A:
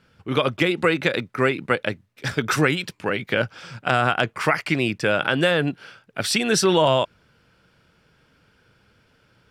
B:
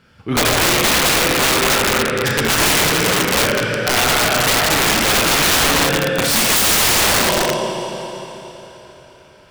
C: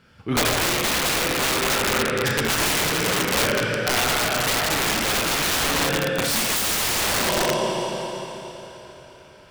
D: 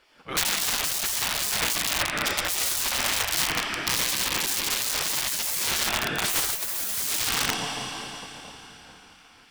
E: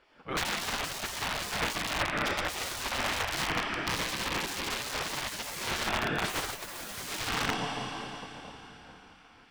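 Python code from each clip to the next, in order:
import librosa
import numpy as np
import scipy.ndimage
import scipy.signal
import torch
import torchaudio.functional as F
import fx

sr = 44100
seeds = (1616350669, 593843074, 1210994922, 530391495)

y1 = fx.diode_clip(x, sr, knee_db=-10.0)
y1 = fx.rev_schroeder(y1, sr, rt60_s=3.6, comb_ms=28, drr_db=-3.5)
y1 = (np.mod(10.0 ** (15.0 / 20.0) * y1 + 1.0, 2.0) - 1.0) / 10.0 ** (15.0 / 20.0)
y1 = F.gain(torch.from_numpy(y1), 5.5).numpy()
y2 = fx.rider(y1, sr, range_db=5, speed_s=0.5)
y2 = F.gain(torch.from_numpy(y2), -6.5).numpy()
y3 = fx.spec_gate(y2, sr, threshold_db=-10, keep='weak')
y4 = fx.lowpass(y3, sr, hz=1700.0, slope=6)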